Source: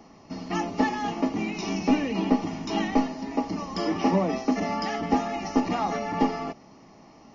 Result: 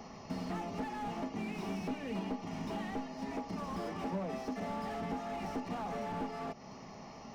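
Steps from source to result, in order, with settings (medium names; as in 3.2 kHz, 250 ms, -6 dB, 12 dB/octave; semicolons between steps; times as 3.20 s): compression 5:1, threshold -37 dBFS, peak gain reduction 18.5 dB; peaking EQ 310 Hz -14.5 dB 0.21 oct; slew-rate limiter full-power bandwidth 7.7 Hz; trim +3 dB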